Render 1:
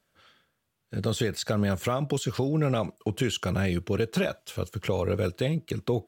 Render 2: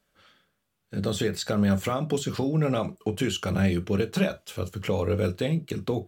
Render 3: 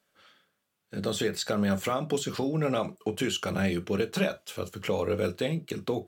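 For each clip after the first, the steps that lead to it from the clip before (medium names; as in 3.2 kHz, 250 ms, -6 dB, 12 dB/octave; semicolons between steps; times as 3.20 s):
on a send at -11.5 dB: bass shelf 350 Hz +11 dB + reverberation, pre-delay 3 ms
high-pass 250 Hz 6 dB/octave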